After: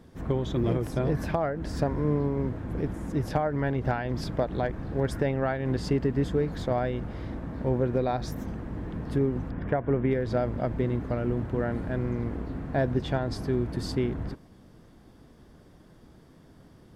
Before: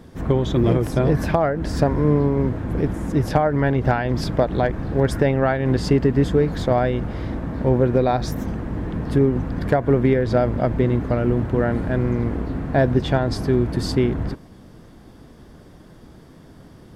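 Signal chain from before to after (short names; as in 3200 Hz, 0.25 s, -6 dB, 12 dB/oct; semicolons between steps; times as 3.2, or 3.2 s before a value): 9.51–10.11 polynomial smoothing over 25 samples; gain -8.5 dB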